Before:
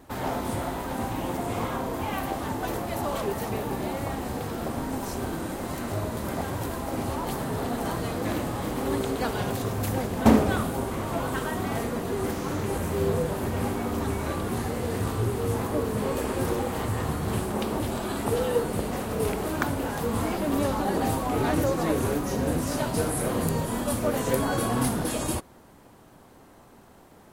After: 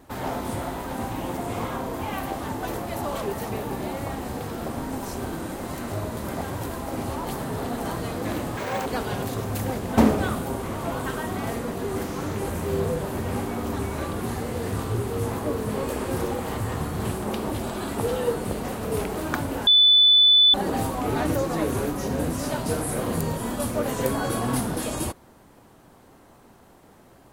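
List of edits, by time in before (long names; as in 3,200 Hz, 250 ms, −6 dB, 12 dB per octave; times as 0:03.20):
0:08.57–0:09.14: play speed 197%
0:19.95–0:20.82: beep over 3,490 Hz −12 dBFS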